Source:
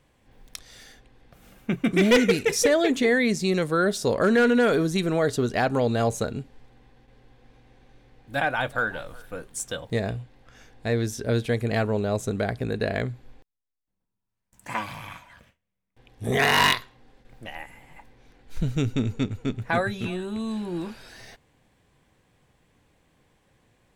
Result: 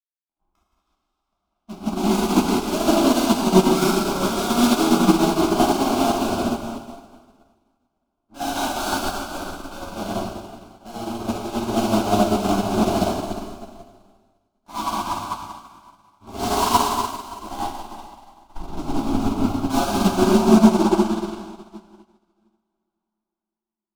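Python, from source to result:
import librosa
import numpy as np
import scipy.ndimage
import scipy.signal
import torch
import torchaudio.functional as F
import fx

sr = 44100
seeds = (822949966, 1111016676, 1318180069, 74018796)

y = fx.ladder_lowpass(x, sr, hz=1800.0, resonance_pct=35)
y = fx.fuzz(y, sr, gain_db=48.0, gate_db=-55.0)
y = fx.fixed_phaser(y, sr, hz=490.0, stages=6)
y = fx.rev_plate(y, sr, seeds[0], rt60_s=4.3, hf_ratio=0.85, predelay_ms=0, drr_db=-10.0)
y = fx.upward_expand(y, sr, threshold_db=-30.0, expansion=2.5)
y = F.gain(torch.from_numpy(y), -4.0).numpy()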